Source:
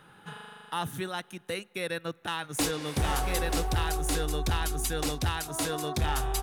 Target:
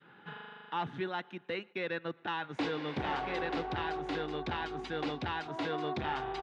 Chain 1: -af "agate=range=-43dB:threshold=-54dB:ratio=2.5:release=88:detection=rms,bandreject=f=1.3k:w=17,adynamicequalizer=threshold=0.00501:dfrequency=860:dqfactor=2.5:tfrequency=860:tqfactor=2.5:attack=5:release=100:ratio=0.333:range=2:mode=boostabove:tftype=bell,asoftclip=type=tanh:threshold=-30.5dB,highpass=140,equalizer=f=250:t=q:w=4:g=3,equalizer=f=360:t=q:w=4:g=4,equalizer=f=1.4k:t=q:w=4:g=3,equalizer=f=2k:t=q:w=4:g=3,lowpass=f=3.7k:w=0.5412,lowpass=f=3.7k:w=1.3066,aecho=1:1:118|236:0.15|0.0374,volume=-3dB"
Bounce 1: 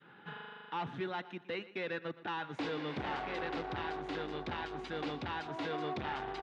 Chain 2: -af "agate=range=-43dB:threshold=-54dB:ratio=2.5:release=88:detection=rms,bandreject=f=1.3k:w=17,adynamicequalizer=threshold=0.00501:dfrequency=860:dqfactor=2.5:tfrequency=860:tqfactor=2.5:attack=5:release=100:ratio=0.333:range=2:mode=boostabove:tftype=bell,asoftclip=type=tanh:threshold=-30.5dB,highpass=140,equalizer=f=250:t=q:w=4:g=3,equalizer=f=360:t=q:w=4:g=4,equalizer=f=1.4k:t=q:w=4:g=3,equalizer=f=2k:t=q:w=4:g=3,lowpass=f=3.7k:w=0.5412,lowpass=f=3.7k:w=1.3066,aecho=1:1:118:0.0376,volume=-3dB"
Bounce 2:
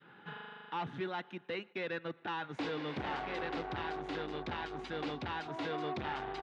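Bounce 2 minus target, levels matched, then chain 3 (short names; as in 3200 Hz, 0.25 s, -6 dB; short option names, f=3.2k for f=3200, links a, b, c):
soft clip: distortion +7 dB
-af "agate=range=-43dB:threshold=-54dB:ratio=2.5:release=88:detection=rms,bandreject=f=1.3k:w=17,adynamicequalizer=threshold=0.00501:dfrequency=860:dqfactor=2.5:tfrequency=860:tqfactor=2.5:attack=5:release=100:ratio=0.333:range=2:mode=boostabove:tftype=bell,asoftclip=type=tanh:threshold=-24dB,highpass=140,equalizer=f=250:t=q:w=4:g=3,equalizer=f=360:t=q:w=4:g=4,equalizer=f=1.4k:t=q:w=4:g=3,equalizer=f=2k:t=q:w=4:g=3,lowpass=f=3.7k:w=0.5412,lowpass=f=3.7k:w=1.3066,aecho=1:1:118:0.0376,volume=-3dB"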